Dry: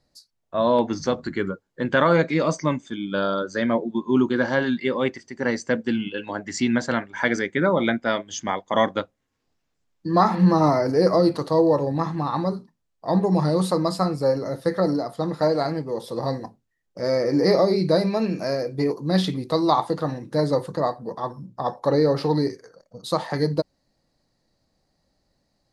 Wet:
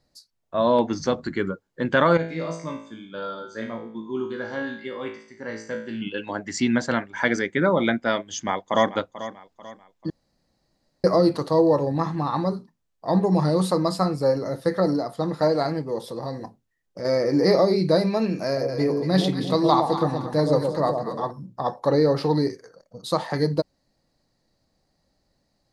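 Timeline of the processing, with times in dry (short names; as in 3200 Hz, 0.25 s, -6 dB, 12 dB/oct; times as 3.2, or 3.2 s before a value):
2.17–6.02 resonator 55 Hz, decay 0.55 s, mix 90%
8.28–8.91 echo throw 0.44 s, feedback 40%, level -13.5 dB
10.1–11.04 room tone
16–17.05 compressor 2:1, threshold -30 dBFS
18.45–21.31 echo with dull and thin repeats by turns 0.116 s, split 880 Hz, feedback 61%, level -4 dB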